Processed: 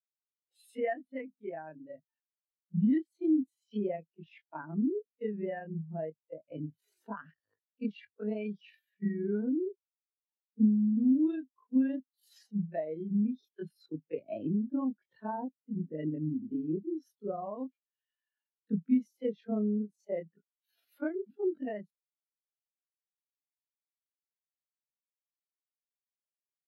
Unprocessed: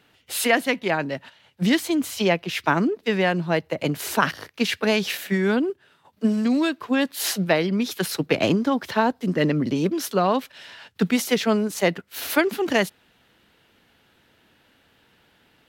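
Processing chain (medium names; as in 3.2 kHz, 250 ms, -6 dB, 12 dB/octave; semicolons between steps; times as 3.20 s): granular stretch 1.7×, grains 93 ms; compression 2:1, threshold -23 dBFS, peak gain reduction 6 dB; spectral contrast expander 2.5:1; trim -6.5 dB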